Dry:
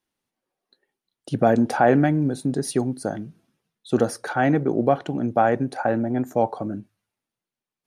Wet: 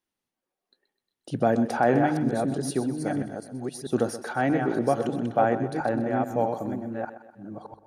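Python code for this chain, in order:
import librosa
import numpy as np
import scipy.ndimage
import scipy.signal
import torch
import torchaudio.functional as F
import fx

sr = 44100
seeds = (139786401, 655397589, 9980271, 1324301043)

y = fx.reverse_delay(x, sr, ms=645, wet_db=-5.5)
y = fx.hum_notches(y, sr, base_hz=50, count=3)
y = fx.echo_thinned(y, sr, ms=127, feedback_pct=50, hz=180.0, wet_db=-12.5)
y = F.gain(torch.from_numpy(y), -4.5).numpy()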